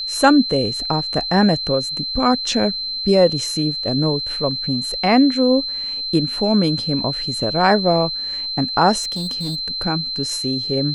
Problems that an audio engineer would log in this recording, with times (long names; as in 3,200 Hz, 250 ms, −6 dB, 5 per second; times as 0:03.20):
whistle 4,100 Hz −23 dBFS
0:09.02–0:09.60: clipping −21 dBFS